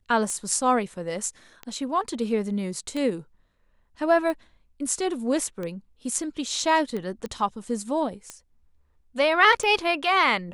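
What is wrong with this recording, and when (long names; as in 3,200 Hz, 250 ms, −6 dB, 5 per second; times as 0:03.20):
scratch tick 45 rpm −20 dBFS
0:07.26: click −21 dBFS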